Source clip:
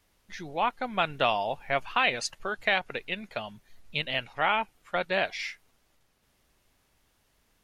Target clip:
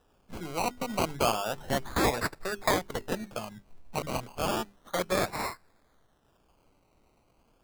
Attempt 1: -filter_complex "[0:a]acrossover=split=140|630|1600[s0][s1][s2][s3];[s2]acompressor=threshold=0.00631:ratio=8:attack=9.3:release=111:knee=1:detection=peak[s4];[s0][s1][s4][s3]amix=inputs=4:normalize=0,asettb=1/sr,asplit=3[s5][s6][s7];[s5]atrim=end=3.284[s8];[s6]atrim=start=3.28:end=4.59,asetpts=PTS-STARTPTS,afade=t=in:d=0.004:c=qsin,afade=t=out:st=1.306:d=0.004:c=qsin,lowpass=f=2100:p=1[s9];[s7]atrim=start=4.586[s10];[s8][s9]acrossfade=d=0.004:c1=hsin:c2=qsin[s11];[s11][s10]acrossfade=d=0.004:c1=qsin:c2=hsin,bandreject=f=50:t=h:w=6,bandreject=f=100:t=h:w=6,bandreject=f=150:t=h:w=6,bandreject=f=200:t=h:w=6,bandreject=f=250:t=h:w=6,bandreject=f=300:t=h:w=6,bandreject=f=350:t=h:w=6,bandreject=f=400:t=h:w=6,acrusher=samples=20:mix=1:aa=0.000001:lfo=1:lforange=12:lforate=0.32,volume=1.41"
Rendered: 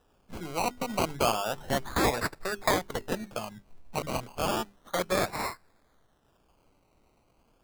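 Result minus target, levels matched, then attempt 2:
compression: peak gain reduction -5.5 dB
-filter_complex "[0:a]acrossover=split=140|630|1600[s0][s1][s2][s3];[s2]acompressor=threshold=0.00299:ratio=8:attack=9.3:release=111:knee=1:detection=peak[s4];[s0][s1][s4][s3]amix=inputs=4:normalize=0,asettb=1/sr,asplit=3[s5][s6][s7];[s5]atrim=end=3.284[s8];[s6]atrim=start=3.28:end=4.59,asetpts=PTS-STARTPTS,afade=t=in:d=0.004:c=qsin,afade=t=out:st=1.306:d=0.004:c=qsin,lowpass=f=2100:p=1[s9];[s7]atrim=start=4.586[s10];[s8][s9]acrossfade=d=0.004:c1=hsin:c2=qsin[s11];[s11][s10]acrossfade=d=0.004:c1=qsin:c2=hsin,bandreject=f=50:t=h:w=6,bandreject=f=100:t=h:w=6,bandreject=f=150:t=h:w=6,bandreject=f=200:t=h:w=6,bandreject=f=250:t=h:w=6,bandreject=f=300:t=h:w=6,bandreject=f=350:t=h:w=6,bandreject=f=400:t=h:w=6,acrusher=samples=20:mix=1:aa=0.000001:lfo=1:lforange=12:lforate=0.32,volume=1.41"

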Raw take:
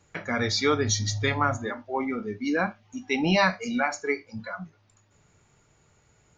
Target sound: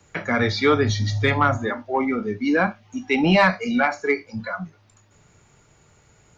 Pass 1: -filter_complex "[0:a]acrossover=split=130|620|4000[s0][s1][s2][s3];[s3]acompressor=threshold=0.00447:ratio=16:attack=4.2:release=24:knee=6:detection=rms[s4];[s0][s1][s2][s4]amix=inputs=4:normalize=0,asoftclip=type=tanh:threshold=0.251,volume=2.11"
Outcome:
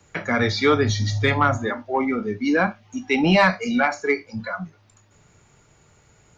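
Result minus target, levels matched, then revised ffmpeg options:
compression: peak gain reduction -8 dB
-filter_complex "[0:a]acrossover=split=130|620|4000[s0][s1][s2][s3];[s3]acompressor=threshold=0.00168:ratio=16:attack=4.2:release=24:knee=6:detection=rms[s4];[s0][s1][s2][s4]amix=inputs=4:normalize=0,asoftclip=type=tanh:threshold=0.251,volume=2.11"

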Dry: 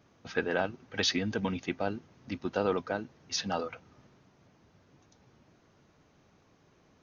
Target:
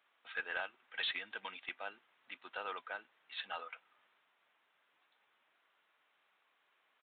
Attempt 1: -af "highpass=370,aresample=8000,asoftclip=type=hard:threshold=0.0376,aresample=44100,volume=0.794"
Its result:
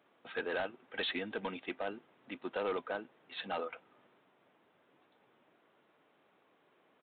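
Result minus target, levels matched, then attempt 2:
500 Hz band +9.5 dB
-af "highpass=1300,aresample=8000,asoftclip=type=hard:threshold=0.0376,aresample=44100,volume=0.794"

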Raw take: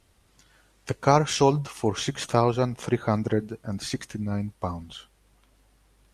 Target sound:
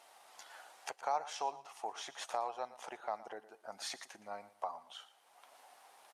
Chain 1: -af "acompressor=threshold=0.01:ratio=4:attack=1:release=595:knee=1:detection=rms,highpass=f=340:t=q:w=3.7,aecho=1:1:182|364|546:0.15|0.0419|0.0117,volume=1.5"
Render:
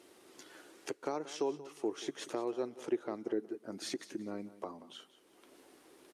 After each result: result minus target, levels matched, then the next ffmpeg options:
250 Hz band +18.5 dB; echo 66 ms late
-af "acompressor=threshold=0.01:ratio=4:attack=1:release=595:knee=1:detection=rms,highpass=f=760:t=q:w=3.7,aecho=1:1:182|364|546:0.15|0.0419|0.0117,volume=1.5"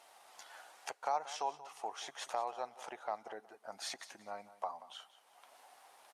echo 66 ms late
-af "acompressor=threshold=0.01:ratio=4:attack=1:release=595:knee=1:detection=rms,highpass=f=760:t=q:w=3.7,aecho=1:1:116|232|348:0.15|0.0419|0.0117,volume=1.5"

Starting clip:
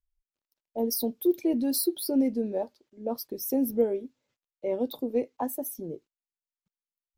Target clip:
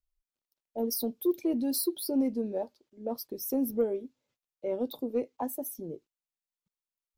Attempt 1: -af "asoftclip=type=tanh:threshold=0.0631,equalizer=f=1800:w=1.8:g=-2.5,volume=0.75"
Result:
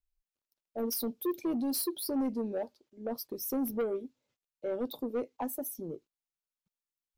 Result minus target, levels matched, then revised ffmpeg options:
saturation: distortion +15 dB
-af "asoftclip=type=tanh:threshold=0.224,equalizer=f=1800:w=1.8:g=-2.5,volume=0.75"

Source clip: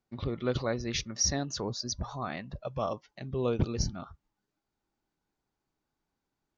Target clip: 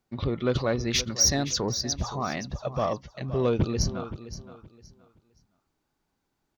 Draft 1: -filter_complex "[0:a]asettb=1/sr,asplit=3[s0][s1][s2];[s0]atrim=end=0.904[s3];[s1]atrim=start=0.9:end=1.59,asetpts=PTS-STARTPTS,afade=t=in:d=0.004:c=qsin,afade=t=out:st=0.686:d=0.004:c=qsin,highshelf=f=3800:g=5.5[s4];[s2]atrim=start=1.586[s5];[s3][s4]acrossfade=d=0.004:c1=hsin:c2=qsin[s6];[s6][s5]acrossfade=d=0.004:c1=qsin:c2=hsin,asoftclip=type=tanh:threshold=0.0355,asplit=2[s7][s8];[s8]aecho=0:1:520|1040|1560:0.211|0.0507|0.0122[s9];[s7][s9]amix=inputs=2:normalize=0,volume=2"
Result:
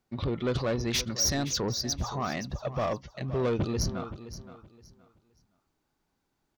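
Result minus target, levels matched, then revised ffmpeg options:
saturation: distortion +8 dB
-filter_complex "[0:a]asettb=1/sr,asplit=3[s0][s1][s2];[s0]atrim=end=0.904[s3];[s1]atrim=start=0.9:end=1.59,asetpts=PTS-STARTPTS,afade=t=in:d=0.004:c=qsin,afade=t=out:st=0.686:d=0.004:c=qsin,highshelf=f=3800:g=5.5[s4];[s2]atrim=start=1.586[s5];[s3][s4]acrossfade=d=0.004:c1=hsin:c2=qsin[s6];[s6][s5]acrossfade=d=0.004:c1=qsin:c2=hsin,asoftclip=type=tanh:threshold=0.0944,asplit=2[s7][s8];[s8]aecho=0:1:520|1040|1560:0.211|0.0507|0.0122[s9];[s7][s9]amix=inputs=2:normalize=0,volume=2"

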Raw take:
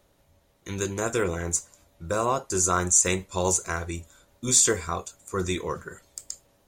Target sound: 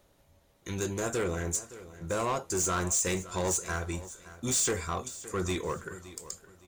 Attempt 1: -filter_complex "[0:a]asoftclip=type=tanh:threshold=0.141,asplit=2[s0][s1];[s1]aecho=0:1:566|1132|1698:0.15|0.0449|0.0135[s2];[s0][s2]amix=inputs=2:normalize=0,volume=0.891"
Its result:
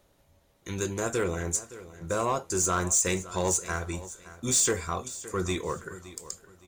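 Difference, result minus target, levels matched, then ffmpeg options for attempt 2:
saturation: distortion -6 dB
-filter_complex "[0:a]asoftclip=type=tanh:threshold=0.0668,asplit=2[s0][s1];[s1]aecho=0:1:566|1132|1698:0.15|0.0449|0.0135[s2];[s0][s2]amix=inputs=2:normalize=0,volume=0.891"

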